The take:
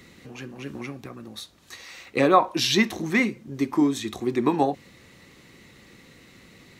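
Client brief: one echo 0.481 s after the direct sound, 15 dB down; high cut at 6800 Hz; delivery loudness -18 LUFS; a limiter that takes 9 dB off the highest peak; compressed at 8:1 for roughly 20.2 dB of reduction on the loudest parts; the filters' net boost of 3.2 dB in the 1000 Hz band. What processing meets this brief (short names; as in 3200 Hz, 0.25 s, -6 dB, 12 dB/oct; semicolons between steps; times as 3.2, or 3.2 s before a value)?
LPF 6800 Hz; bell 1000 Hz +4 dB; compressor 8:1, threshold -31 dBFS; limiter -27 dBFS; echo 0.481 s -15 dB; gain +20.5 dB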